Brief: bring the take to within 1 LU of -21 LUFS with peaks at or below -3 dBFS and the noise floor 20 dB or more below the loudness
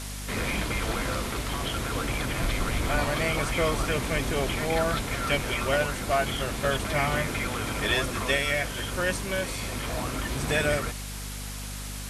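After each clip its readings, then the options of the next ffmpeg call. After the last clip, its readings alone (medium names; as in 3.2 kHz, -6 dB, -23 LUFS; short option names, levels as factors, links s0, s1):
hum 50 Hz; highest harmonic 250 Hz; hum level -35 dBFS; noise floor -36 dBFS; noise floor target -48 dBFS; loudness -28.0 LUFS; peak level -11.0 dBFS; loudness target -21.0 LUFS
-> -af "bandreject=f=50:t=h:w=4,bandreject=f=100:t=h:w=4,bandreject=f=150:t=h:w=4,bandreject=f=200:t=h:w=4,bandreject=f=250:t=h:w=4"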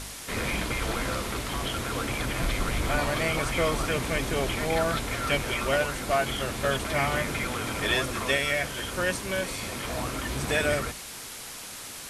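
hum not found; noise floor -40 dBFS; noise floor target -48 dBFS
-> -af "afftdn=nr=8:nf=-40"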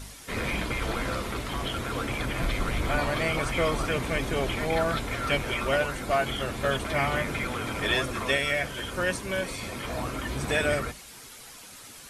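noise floor -46 dBFS; noise floor target -49 dBFS
-> -af "afftdn=nr=6:nf=-46"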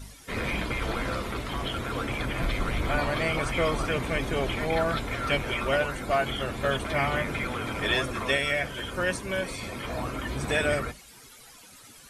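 noise floor -51 dBFS; loudness -28.5 LUFS; peak level -12.0 dBFS; loudness target -21.0 LUFS
-> -af "volume=2.37"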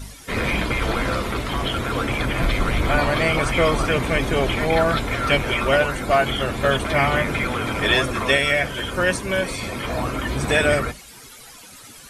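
loudness -21.0 LUFS; peak level -4.5 dBFS; noise floor -43 dBFS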